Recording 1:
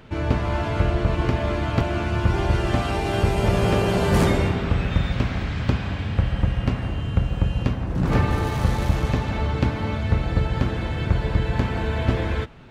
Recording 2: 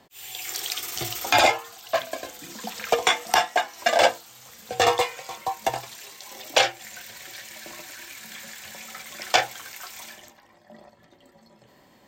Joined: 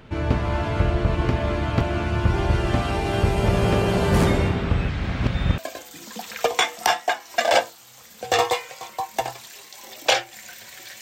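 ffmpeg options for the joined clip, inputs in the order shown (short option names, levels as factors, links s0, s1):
-filter_complex "[0:a]apad=whole_dur=11.01,atrim=end=11.01,asplit=2[s0][s1];[s0]atrim=end=4.892[s2];[s1]atrim=start=4.888:end=5.582,asetpts=PTS-STARTPTS,areverse[s3];[1:a]atrim=start=2.058:end=7.49[s4];[s2][s3]acrossfade=d=0.004:c1=hsin:c2=hsin[s5];[s5][s4]acrossfade=d=0.004:c1=hsin:c2=hsin"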